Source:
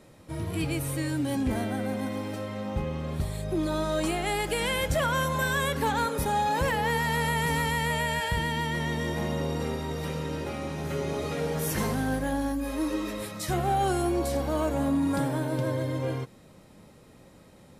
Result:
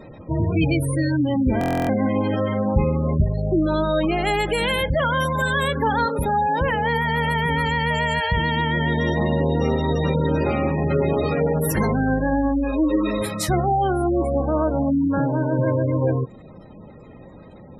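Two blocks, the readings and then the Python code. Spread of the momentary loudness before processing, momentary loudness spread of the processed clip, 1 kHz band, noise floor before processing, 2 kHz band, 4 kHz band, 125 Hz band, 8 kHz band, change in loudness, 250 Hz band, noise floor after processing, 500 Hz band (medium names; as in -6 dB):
7 LU, 1 LU, +6.5 dB, -53 dBFS, +6.0 dB, +4.5 dB, +8.5 dB, -0.5 dB, +7.5 dB, +8.5 dB, -43 dBFS, +8.0 dB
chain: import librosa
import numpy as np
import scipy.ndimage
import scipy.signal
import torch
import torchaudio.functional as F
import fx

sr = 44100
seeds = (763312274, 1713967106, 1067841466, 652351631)

y = fx.spec_gate(x, sr, threshold_db=-20, keep='strong')
y = fx.rider(y, sr, range_db=5, speed_s=0.5)
y = fx.buffer_glitch(y, sr, at_s=(1.59,), block=1024, repeats=12)
y = y * librosa.db_to_amplitude(8.0)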